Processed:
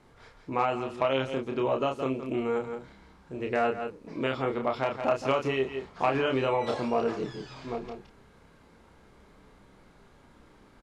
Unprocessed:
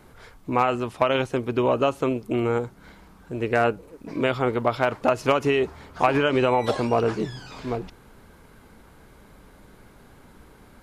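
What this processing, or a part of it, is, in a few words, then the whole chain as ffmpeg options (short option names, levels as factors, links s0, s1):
ducked delay: -filter_complex "[0:a]lowpass=7100,lowshelf=f=150:g=-3.5,bandreject=f=1500:w=21,asplit=2[s0][s1];[s1]adelay=30,volume=0.631[s2];[s0][s2]amix=inputs=2:normalize=0,asplit=3[s3][s4][s5];[s4]adelay=168,volume=0.473[s6];[s5]apad=whole_len=485948[s7];[s6][s7]sidechaincompress=threshold=0.0251:ratio=8:attack=48:release=123[s8];[s3][s8]amix=inputs=2:normalize=0,volume=0.447"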